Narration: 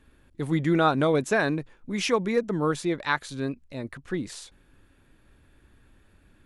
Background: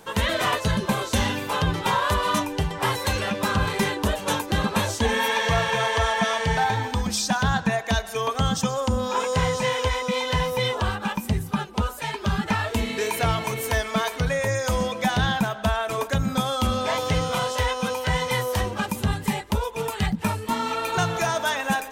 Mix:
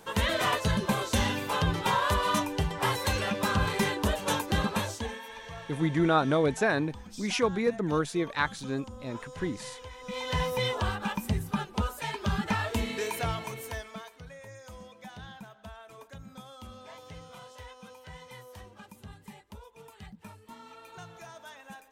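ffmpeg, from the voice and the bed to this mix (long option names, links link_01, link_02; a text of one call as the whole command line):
ffmpeg -i stem1.wav -i stem2.wav -filter_complex "[0:a]adelay=5300,volume=-2.5dB[link_01];[1:a]volume=12dB,afade=type=out:start_time=4.58:duration=0.63:silence=0.141254,afade=type=in:start_time=9.98:duration=0.43:silence=0.158489,afade=type=out:start_time=12.77:duration=1.34:silence=0.125893[link_02];[link_01][link_02]amix=inputs=2:normalize=0" out.wav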